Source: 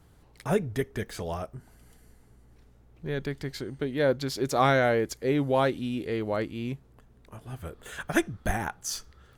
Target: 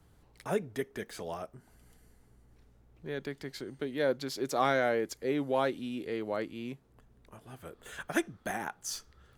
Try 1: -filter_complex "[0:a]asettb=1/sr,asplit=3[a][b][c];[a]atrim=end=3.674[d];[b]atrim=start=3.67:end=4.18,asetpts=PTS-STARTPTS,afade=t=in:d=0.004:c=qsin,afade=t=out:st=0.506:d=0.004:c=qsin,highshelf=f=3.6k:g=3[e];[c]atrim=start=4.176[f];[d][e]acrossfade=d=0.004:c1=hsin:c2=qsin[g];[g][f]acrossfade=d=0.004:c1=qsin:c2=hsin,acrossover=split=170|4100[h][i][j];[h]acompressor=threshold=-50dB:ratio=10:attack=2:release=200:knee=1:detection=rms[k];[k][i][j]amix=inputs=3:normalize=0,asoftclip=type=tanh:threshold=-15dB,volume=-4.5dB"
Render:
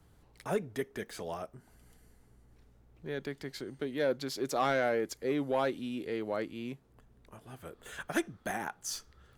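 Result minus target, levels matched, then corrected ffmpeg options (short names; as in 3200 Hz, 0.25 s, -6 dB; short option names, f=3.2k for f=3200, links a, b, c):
soft clip: distortion +13 dB
-filter_complex "[0:a]asettb=1/sr,asplit=3[a][b][c];[a]atrim=end=3.674[d];[b]atrim=start=3.67:end=4.18,asetpts=PTS-STARTPTS,afade=t=in:d=0.004:c=qsin,afade=t=out:st=0.506:d=0.004:c=qsin,highshelf=f=3.6k:g=3[e];[c]atrim=start=4.176[f];[d][e]acrossfade=d=0.004:c1=hsin:c2=qsin[g];[g][f]acrossfade=d=0.004:c1=qsin:c2=hsin,acrossover=split=170|4100[h][i][j];[h]acompressor=threshold=-50dB:ratio=10:attack=2:release=200:knee=1:detection=rms[k];[k][i][j]amix=inputs=3:normalize=0,asoftclip=type=tanh:threshold=-7dB,volume=-4.5dB"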